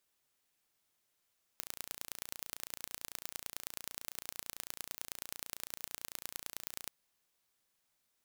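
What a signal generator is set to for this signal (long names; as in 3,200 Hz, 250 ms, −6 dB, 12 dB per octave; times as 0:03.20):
impulse train 29 per second, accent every 3, −11.5 dBFS 5.28 s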